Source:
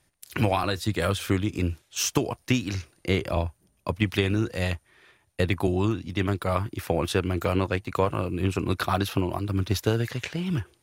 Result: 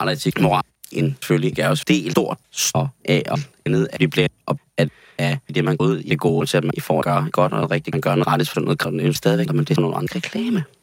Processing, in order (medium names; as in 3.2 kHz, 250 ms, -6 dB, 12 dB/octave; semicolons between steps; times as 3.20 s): slices played last to first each 305 ms, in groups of 3; frequency shift +53 Hz; trim +7 dB